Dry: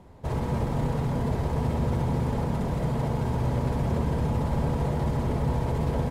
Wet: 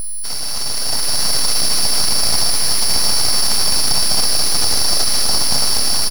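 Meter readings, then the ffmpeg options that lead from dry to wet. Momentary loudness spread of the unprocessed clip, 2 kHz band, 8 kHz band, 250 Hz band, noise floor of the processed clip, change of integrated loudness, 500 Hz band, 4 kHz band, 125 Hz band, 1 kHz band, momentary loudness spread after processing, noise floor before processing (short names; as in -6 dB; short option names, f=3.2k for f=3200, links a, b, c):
1 LU, +14.0 dB, +35.5 dB, -5.0 dB, -20 dBFS, +12.5 dB, -0.5 dB, +33.5 dB, -8.5 dB, +5.5 dB, 5 LU, -30 dBFS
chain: -filter_complex "[0:a]lowpass=f=7.4k:w=0.5412,lowpass=f=7.4k:w=1.3066,asplit=2[a][b];[b]aecho=0:1:270|472.5|624.4|738.3|823.7:0.631|0.398|0.251|0.158|0.1[c];[a][c]amix=inputs=2:normalize=0,alimiter=limit=-19.5dB:level=0:latency=1:release=20,highpass=f=340:t=q:w=3.6,highshelf=f=4.6k:g=9,aeval=exprs='val(0)+0.0178*sin(2*PI*5000*n/s)':c=same,aexciter=amount=5.4:drive=6.9:freq=3.9k,aeval=exprs='abs(val(0))':c=same,dynaudnorm=f=270:g=7:m=8.5dB,volume=2dB"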